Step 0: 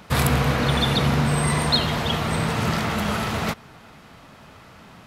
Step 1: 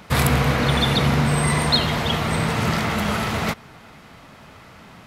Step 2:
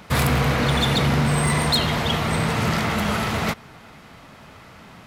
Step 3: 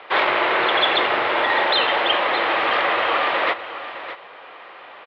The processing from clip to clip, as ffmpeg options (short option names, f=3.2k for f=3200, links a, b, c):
-af "equalizer=f=2.1k:t=o:w=0.23:g=3,volume=1.5dB"
-af "volume=14.5dB,asoftclip=hard,volume=-14.5dB"
-af "aecho=1:1:613:0.237,highpass=f=570:t=q:w=0.5412,highpass=f=570:t=q:w=1.307,lowpass=f=3.6k:t=q:w=0.5176,lowpass=f=3.6k:t=q:w=0.7071,lowpass=f=3.6k:t=q:w=1.932,afreqshift=-120,volume=6.5dB"